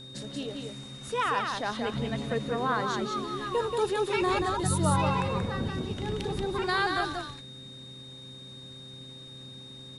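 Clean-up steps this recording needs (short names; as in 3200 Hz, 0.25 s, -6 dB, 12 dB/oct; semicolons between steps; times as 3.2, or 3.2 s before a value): de-hum 130 Hz, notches 4; notch 3700 Hz, Q 30; inverse comb 0.182 s -4 dB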